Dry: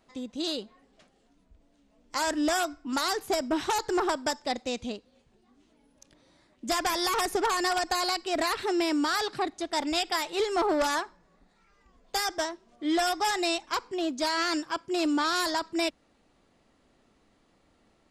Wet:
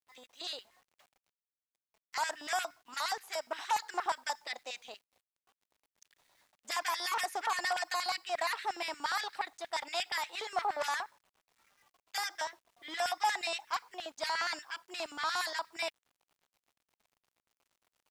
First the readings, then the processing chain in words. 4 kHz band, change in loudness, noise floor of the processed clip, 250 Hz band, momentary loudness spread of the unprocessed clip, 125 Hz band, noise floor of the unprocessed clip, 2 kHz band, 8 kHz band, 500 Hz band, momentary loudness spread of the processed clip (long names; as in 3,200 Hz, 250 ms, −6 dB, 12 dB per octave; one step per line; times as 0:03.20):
−6.5 dB, −7.0 dB, below −85 dBFS, −25.5 dB, 7 LU, below −15 dB, −67 dBFS, −4.0 dB, −7.5 dB, −11.5 dB, 9 LU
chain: auto-filter high-pass square 8.5 Hz 810–1,900 Hz
bit reduction 10 bits
level −8 dB